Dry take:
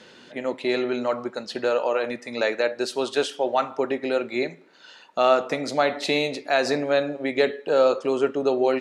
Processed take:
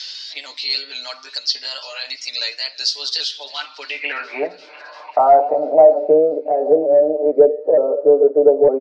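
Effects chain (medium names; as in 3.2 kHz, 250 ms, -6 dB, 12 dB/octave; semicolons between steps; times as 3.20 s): sawtooth pitch modulation +2 st, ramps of 457 ms; high-pass 170 Hz 24 dB/octave; comb 6.7 ms, depth 78%; in parallel at 0 dB: compression, threshold -33 dBFS, peak gain reduction 20 dB; on the sum: band-pass sweep 5.1 kHz -> 640 Hz, 3.84–4.47 s; sine folder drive 5 dB, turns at -8.5 dBFS; low-pass sweep 4.9 kHz -> 470 Hz, 3.11–6.19 s; on a send: feedback echo behind a high-pass 345 ms, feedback 63%, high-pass 1.8 kHz, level -23 dB; on the sum: tape noise reduction on one side only encoder only; trim -1.5 dB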